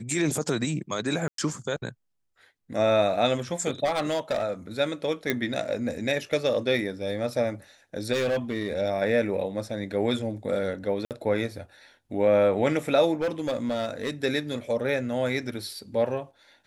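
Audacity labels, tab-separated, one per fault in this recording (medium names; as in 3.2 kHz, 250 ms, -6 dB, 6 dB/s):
1.280000	1.380000	dropout 103 ms
3.840000	4.430000	clipped -21.5 dBFS
5.300000	5.300000	pop -10 dBFS
8.120000	8.730000	clipped -22 dBFS
11.050000	11.110000	dropout 58 ms
13.210000	14.100000	clipped -22.5 dBFS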